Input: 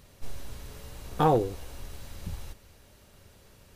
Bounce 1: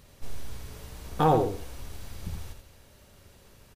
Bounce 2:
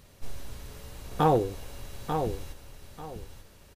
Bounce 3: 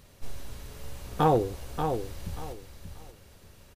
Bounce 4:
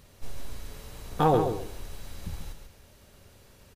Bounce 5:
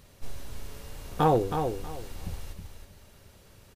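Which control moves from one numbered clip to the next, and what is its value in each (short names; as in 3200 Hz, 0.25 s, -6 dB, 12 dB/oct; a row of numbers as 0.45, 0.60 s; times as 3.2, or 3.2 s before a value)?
feedback echo, time: 83, 891, 584, 137, 320 ms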